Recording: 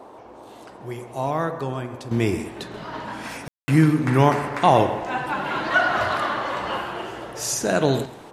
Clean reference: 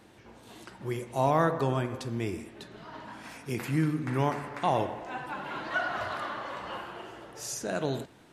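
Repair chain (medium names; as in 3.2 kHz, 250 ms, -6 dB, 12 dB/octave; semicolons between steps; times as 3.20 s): room tone fill 3.48–3.68 s; noise print and reduce 7 dB; inverse comb 134 ms -18 dB; trim 0 dB, from 2.11 s -11 dB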